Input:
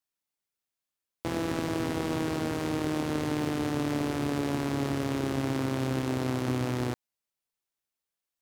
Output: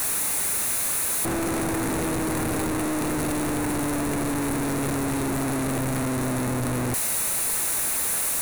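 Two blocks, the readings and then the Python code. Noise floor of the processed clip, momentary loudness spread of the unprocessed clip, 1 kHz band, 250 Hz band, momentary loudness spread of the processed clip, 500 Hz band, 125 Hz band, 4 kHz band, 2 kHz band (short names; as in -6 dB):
-26 dBFS, 1 LU, +6.0 dB, +4.0 dB, 4 LU, +3.5 dB, +3.0 dB, +5.5 dB, +7.5 dB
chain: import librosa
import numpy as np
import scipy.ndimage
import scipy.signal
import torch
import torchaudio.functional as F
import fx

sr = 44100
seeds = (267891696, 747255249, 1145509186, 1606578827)

y = np.sign(x) * np.sqrt(np.mean(np.square(x)))
y = fx.graphic_eq_31(y, sr, hz=(3150, 5000, 10000), db=(-10, -9, 10))
y = F.gain(torch.from_numpy(y), 6.0).numpy()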